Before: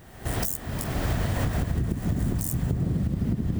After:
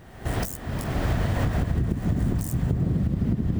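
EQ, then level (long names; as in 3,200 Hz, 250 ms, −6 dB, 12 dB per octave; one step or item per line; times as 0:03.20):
high-shelf EQ 5,500 Hz −9.5 dB
+2.0 dB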